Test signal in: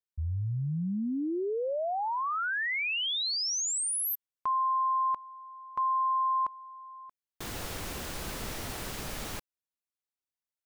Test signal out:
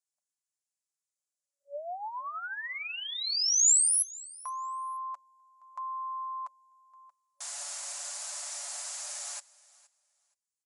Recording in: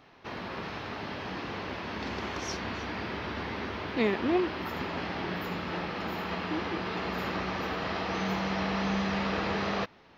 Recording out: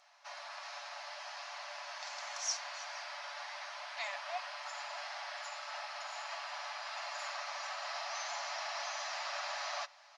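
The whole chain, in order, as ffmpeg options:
-af "equalizer=f=7.2k:w=2.7:g=10,aexciter=amount=3.2:drive=3.7:freq=4.5k,aecho=1:1:7:0.42,afftfilt=real='re*between(b*sr/4096,570,11000)':imag='im*between(b*sr/4096,570,11000)':win_size=4096:overlap=0.75,aecho=1:1:471|942:0.0794|0.0151,volume=-7.5dB"

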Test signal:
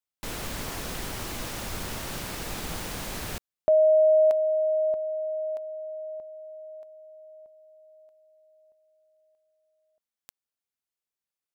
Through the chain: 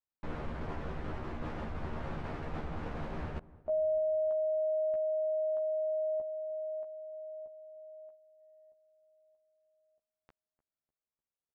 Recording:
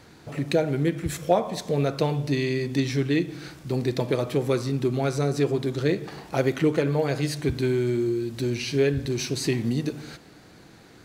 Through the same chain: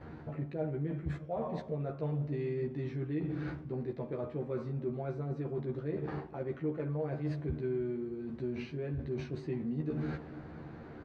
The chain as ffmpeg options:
-filter_complex "[0:a]lowpass=1.4k,lowshelf=f=150:g=3.5,areverse,acompressor=threshold=-34dB:ratio=8:attack=0.69:release=331:knee=1:detection=peak,areverse,asplit=2[a][b];[b]adelay=13,volume=-3dB[c];[a][c]amix=inputs=2:normalize=0,asplit=2[d][e];[e]adelay=300,lowpass=f=870:p=1,volume=-18dB,asplit=2[f][g];[g]adelay=300,lowpass=f=870:p=1,volume=0.51,asplit=2[h][i];[i]adelay=300,lowpass=f=870:p=1,volume=0.51,asplit=2[j][k];[k]adelay=300,lowpass=f=870:p=1,volume=0.51[l];[d][f][h][j][l]amix=inputs=5:normalize=0,agate=range=-6dB:threshold=-57dB:ratio=16:release=204:detection=peak,volume=1dB"

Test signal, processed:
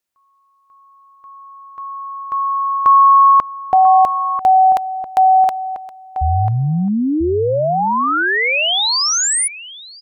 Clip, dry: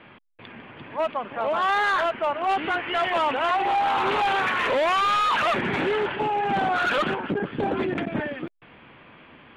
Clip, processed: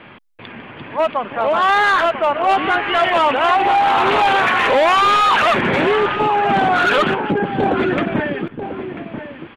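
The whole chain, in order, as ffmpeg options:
-filter_complex "[0:a]asplit=2[a][b];[b]adelay=991.3,volume=-9dB,highshelf=f=4k:g=-22.3[c];[a][c]amix=inputs=2:normalize=0,volume=8dB"

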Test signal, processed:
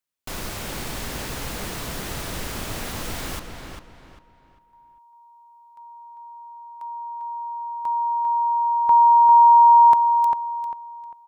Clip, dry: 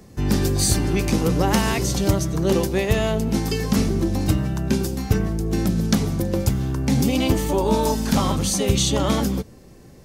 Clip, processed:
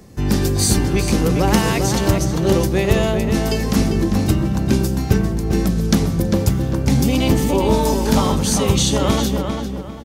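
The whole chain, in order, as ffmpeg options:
-filter_complex "[0:a]asplit=2[a][b];[b]adelay=398,lowpass=f=3.5k:p=1,volume=-5.5dB,asplit=2[c][d];[d]adelay=398,lowpass=f=3.5k:p=1,volume=0.33,asplit=2[e][f];[f]adelay=398,lowpass=f=3.5k:p=1,volume=0.33,asplit=2[g][h];[h]adelay=398,lowpass=f=3.5k:p=1,volume=0.33[i];[a][c][e][g][i]amix=inputs=5:normalize=0,volume=2.5dB"

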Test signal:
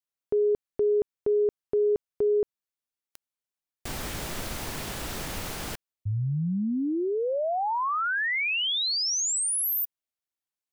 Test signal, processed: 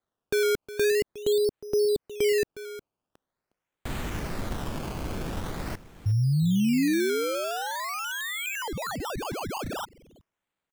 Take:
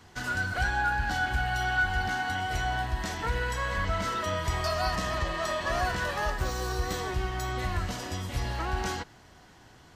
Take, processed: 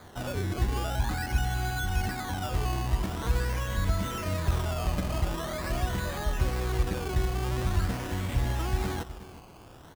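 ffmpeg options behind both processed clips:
-filter_complex "[0:a]acrossover=split=370[a][b];[b]acompressor=threshold=-37dB:ratio=5:attack=0.34:release=191:knee=2.83:detection=peak[c];[a][c]amix=inputs=2:normalize=0,asplit=2[d][e];[e]adelay=361.5,volume=-15dB,highshelf=f=4k:g=-8.13[f];[d][f]amix=inputs=2:normalize=0,acrusher=samples=16:mix=1:aa=0.000001:lfo=1:lforange=16:lforate=0.45,volume=4.5dB"

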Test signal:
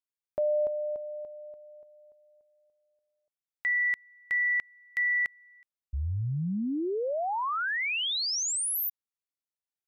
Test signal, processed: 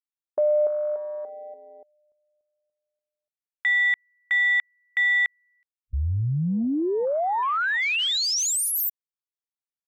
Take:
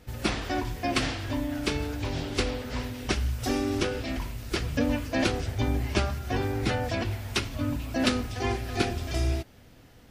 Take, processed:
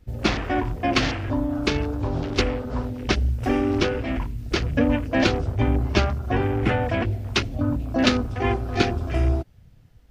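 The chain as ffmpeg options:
-af "afwtdn=0.0126,volume=6dB"

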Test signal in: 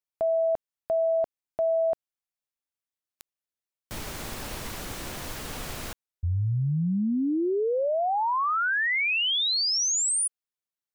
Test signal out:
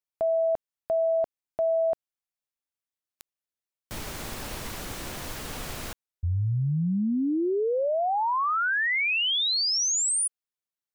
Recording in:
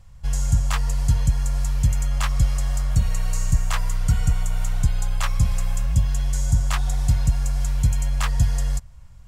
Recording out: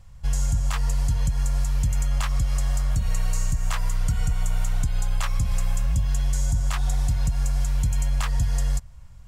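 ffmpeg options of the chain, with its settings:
-af "alimiter=limit=-15dB:level=0:latency=1:release=109"

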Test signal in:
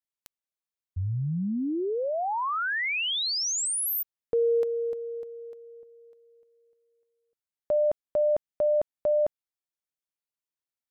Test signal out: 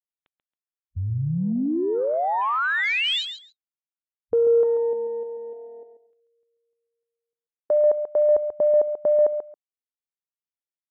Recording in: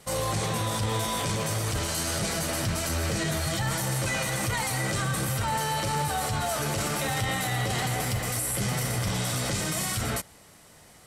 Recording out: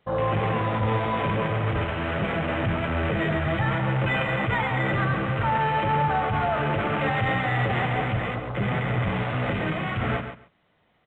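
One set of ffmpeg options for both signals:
-af "aresample=8000,aresample=44100,afwtdn=0.0141,lowshelf=f=82:g=-6,aecho=1:1:137|274:0.355|0.0568,acontrast=24"

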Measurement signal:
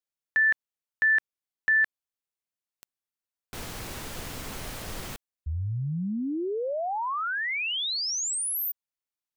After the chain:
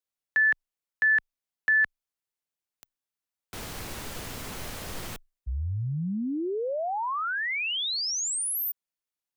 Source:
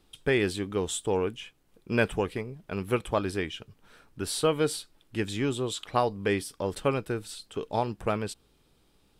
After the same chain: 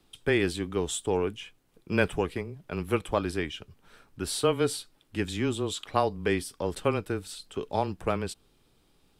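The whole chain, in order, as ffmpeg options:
-af "afreqshift=-15"

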